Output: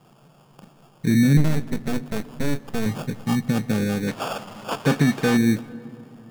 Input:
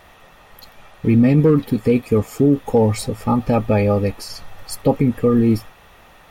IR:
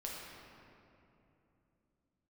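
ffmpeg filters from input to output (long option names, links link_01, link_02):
-filter_complex "[0:a]equalizer=frequency=640:width_type=o:width=0.8:gain=-13.5,acrusher=samples=22:mix=1:aa=0.000001,asplit=3[link_01][link_02][link_03];[link_01]afade=type=out:start_time=4.07:duration=0.02[link_04];[link_02]asplit=2[link_05][link_06];[link_06]highpass=frequency=720:poles=1,volume=21dB,asoftclip=type=tanh:threshold=-6.5dB[link_07];[link_05][link_07]amix=inputs=2:normalize=0,lowpass=frequency=6200:poles=1,volume=-6dB,afade=type=in:start_time=4.07:duration=0.02,afade=type=out:start_time=5.36:duration=0.02[link_08];[link_03]afade=type=in:start_time=5.36:duration=0.02[link_09];[link_04][link_08][link_09]amix=inputs=3:normalize=0,lowshelf=frequency=100:width_type=q:width=3:gain=-13,asettb=1/sr,asplit=3[link_10][link_11][link_12];[link_10]atrim=end=1.374[link_13];[link_11]atrim=start=1.37:end=2.86,asetpts=PTS-STARTPTS,afade=type=in:duration=0.004:curve=qsin,afade=type=out:start_time=1.486:duration=0.004:curve=qsin,aeval=exprs='max(val(0),0)':channel_layout=same[link_14];[link_12]atrim=start=2.856[link_15];[link_13][link_14]acrossfade=duration=0.004:curve1=hsin:curve2=qsin[link_16];[link_16][link_15]acrossfade=duration=0.004:curve1=qsin:curve2=hsin,asplit=2[link_17][link_18];[1:a]atrim=start_sample=2205,asetrate=33516,aresample=44100[link_19];[link_18][link_19]afir=irnorm=-1:irlink=0,volume=-17.5dB[link_20];[link_17][link_20]amix=inputs=2:normalize=0,volume=-6dB"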